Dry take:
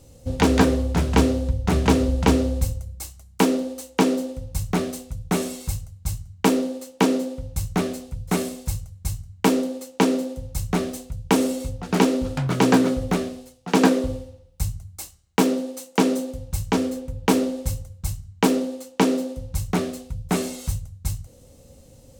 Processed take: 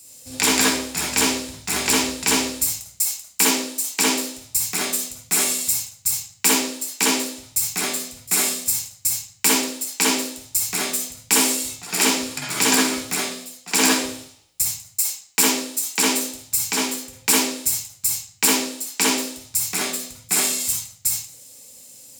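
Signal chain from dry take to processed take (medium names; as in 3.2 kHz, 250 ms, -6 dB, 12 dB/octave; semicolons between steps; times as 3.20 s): tilt EQ +4.5 dB/octave; reverberation RT60 0.50 s, pre-delay 45 ms, DRR -3.5 dB; trim -1.5 dB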